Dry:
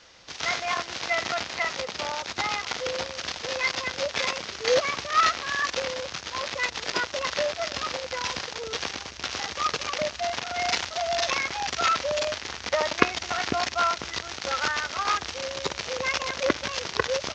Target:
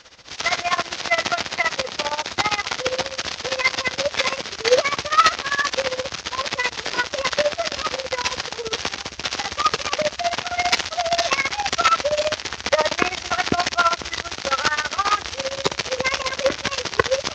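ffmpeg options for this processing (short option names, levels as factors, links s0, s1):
-af "tremolo=f=15:d=0.82,acontrast=90,volume=1.26"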